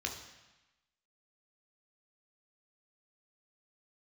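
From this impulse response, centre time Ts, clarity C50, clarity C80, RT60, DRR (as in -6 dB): 28 ms, 7.0 dB, 9.5 dB, 1.0 s, 1.0 dB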